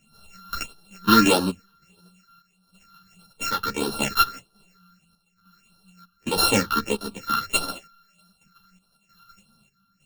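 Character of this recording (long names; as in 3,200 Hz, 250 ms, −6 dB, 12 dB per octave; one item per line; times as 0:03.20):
a buzz of ramps at a fixed pitch in blocks of 32 samples
phaser sweep stages 6, 1.6 Hz, lowest notch 590–2,200 Hz
chopped level 1.1 Hz, depth 65%, duty 65%
a shimmering, thickened sound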